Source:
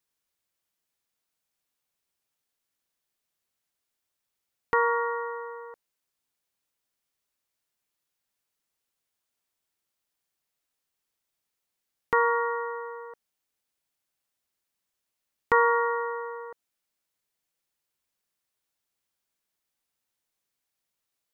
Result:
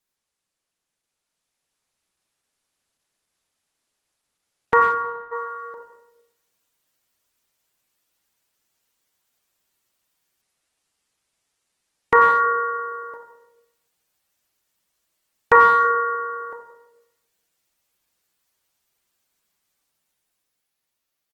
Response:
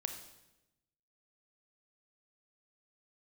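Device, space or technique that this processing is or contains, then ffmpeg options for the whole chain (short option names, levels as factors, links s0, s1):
speakerphone in a meeting room: -filter_complex "[0:a]asplit=3[s0][s1][s2];[s0]afade=t=out:st=4.78:d=0.02[s3];[s1]agate=range=0.0224:threshold=0.112:ratio=3:detection=peak,afade=t=in:st=4.78:d=0.02,afade=t=out:st=5.31:d=0.02[s4];[s2]afade=t=in:st=5.31:d=0.02[s5];[s3][s4][s5]amix=inputs=3:normalize=0[s6];[1:a]atrim=start_sample=2205[s7];[s6][s7]afir=irnorm=-1:irlink=0,asplit=2[s8][s9];[s9]adelay=90,highpass=300,lowpass=3400,asoftclip=type=hard:threshold=0.119,volume=0.224[s10];[s8][s10]amix=inputs=2:normalize=0,dynaudnorm=f=180:g=17:m=2,volume=1.5" -ar 48000 -c:a libopus -b:a 16k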